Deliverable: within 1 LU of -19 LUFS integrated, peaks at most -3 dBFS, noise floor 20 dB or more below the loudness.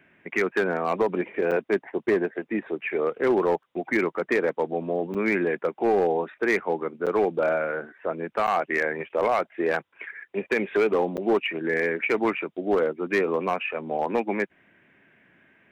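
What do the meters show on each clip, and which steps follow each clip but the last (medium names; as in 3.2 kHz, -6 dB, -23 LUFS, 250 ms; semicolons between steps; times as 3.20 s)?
clipped samples 0.9%; clipping level -15.5 dBFS; dropouts 5; longest dropout 7.3 ms; loudness -26.0 LUFS; peak level -15.5 dBFS; loudness target -19.0 LUFS
-> clip repair -15.5 dBFS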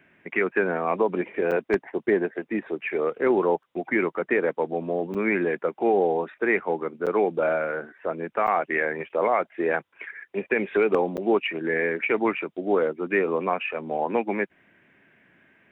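clipped samples 0.0%; dropouts 5; longest dropout 7.3 ms
-> interpolate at 1.51/5.14/7.06/8.47/11.17 s, 7.3 ms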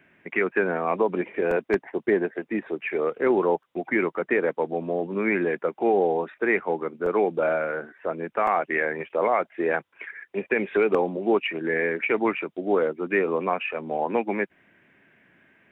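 dropouts 0; loudness -25.5 LUFS; peak level -6.5 dBFS; loudness target -19.0 LUFS
-> trim +6.5 dB; peak limiter -3 dBFS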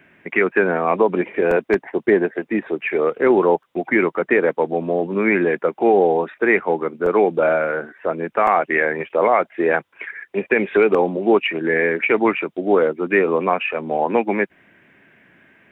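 loudness -19.0 LUFS; peak level -3.0 dBFS; noise floor -59 dBFS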